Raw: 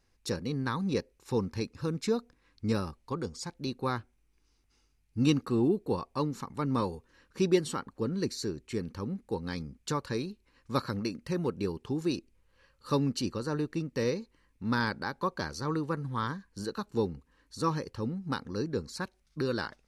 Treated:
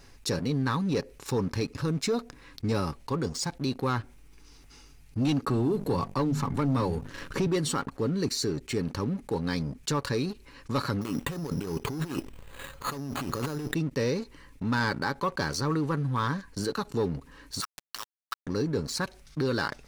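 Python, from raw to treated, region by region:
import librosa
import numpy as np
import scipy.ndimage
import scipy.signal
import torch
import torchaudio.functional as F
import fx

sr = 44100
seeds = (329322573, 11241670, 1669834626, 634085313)

y = fx.chain(x, sr, fx.low_shelf(hz=110.0, db=10.0),
    fx.hum_notches(base_hz=50, count=5),
    fx.band_squash(depth_pct=70), at=(5.46, 7.47))
y = fx.chain(y, sr, fx.over_compress(threshold_db=-42.0, ratio=-1.0),
    fx.resample_bad(factor=8, down='none', up='hold'), at=(11.01, 13.74))
y = fx.chain(y, sr, fx.highpass(hz=1300.0, slope=24),
    fx.gate_flip(shuts_db=-30.0, range_db=-28),
    fx.quant_dither(seeds[0], bits=8, dither='none'), at=(17.6, 18.47))
y = y + 0.33 * np.pad(y, (int(7.1 * sr / 1000.0), 0))[:len(y)]
y = fx.leveller(y, sr, passes=2)
y = fx.env_flatten(y, sr, amount_pct=50)
y = F.gain(torch.from_numpy(y), -7.0).numpy()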